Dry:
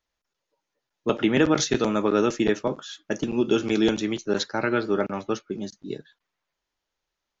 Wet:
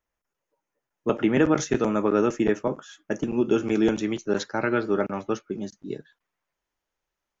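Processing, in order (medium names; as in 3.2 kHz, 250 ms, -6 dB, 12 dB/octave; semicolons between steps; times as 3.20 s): peaking EQ 4.1 kHz -14 dB 0.86 oct, from 3.95 s -7.5 dB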